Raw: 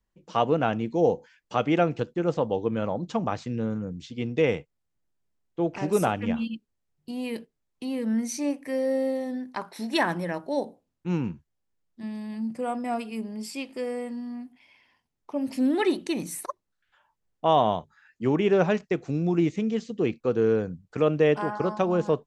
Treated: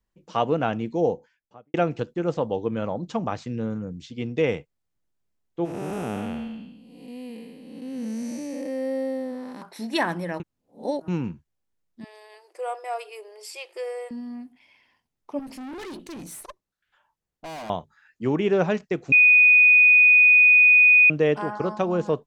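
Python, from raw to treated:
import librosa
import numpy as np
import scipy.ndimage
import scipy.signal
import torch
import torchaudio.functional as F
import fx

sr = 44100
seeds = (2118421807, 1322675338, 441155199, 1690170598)

y = fx.studio_fade_out(x, sr, start_s=0.89, length_s=0.85)
y = fx.spec_blur(y, sr, span_ms=427.0, at=(5.64, 9.61), fade=0.02)
y = fx.brickwall_highpass(y, sr, low_hz=340.0, at=(12.04, 14.11))
y = fx.tube_stage(y, sr, drive_db=35.0, bias=0.4, at=(15.39, 17.7))
y = fx.edit(y, sr, fx.reverse_span(start_s=10.4, length_s=0.68),
    fx.bleep(start_s=19.12, length_s=1.98, hz=2480.0, db=-11.0), tone=tone)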